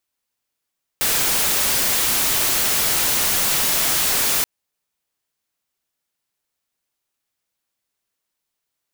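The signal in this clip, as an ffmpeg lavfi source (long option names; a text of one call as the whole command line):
ffmpeg -f lavfi -i "anoisesrc=color=white:amplitude=0.194:duration=3.43:sample_rate=44100:seed=1" out.wav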